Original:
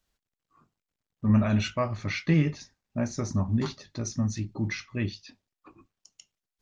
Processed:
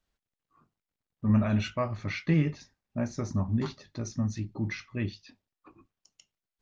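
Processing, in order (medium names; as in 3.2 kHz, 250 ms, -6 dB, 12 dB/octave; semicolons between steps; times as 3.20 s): treble shelf 5.9 kHz -9.5 dB; trim -2 dB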